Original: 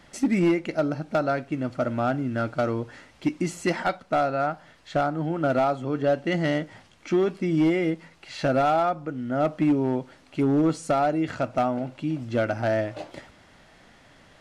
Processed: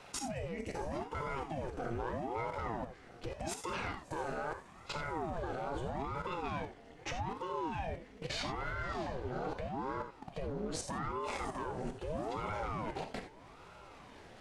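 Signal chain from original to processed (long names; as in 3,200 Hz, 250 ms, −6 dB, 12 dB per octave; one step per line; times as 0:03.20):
brickwall limiter −26.5 dBFS, peak gain reduction 11 dB
on a send: feedback delay with all-pass diffusion 593 ms, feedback 58%, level −12 dB
on the sum: output level in coarse steps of 20 dB
reverb whose tail is shaped and stops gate 110 ms flat, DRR 5 dB
in parallel at −1.5 dB: downward compressor, threshold −52 dBFS, peak gain reduction 16 dB
on the sum: ring modulator whose carrier an LFO sweeps 420 Hz, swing 75%, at 0.8 Hz
level +2.5 dB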